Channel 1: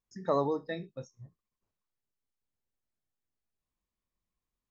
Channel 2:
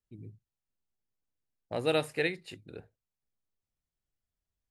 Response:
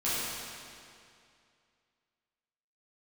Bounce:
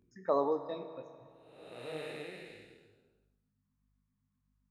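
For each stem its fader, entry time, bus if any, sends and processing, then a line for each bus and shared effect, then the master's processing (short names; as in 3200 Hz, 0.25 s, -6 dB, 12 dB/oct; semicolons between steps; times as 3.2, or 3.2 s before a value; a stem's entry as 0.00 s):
+0.5 dB, 0.00 s, send -18 dB, tone controls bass -11 dB, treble -12 dB; envelope phaser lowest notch 560 Hz, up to 2300 Hz, full sweep at -31.5 dBFS
-1.5 dB, 0.00 s, no send, time blur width 0.574 s; hum 50 Hz, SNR 22 dB; detuned doubles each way 53 cents; auto duck -9 dB, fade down 0.20 s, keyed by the first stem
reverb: on, RT60 2.4 s, pre-delay 8 ms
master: low shelf 130 Hz -10.5 dB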